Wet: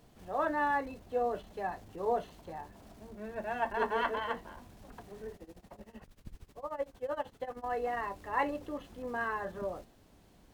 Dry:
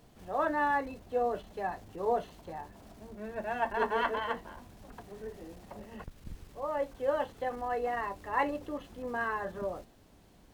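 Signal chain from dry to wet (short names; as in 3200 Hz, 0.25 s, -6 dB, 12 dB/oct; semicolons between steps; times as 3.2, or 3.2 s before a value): 5.35–7.64 tremolo 13 Hz, depth 89%; gain -1.5 dB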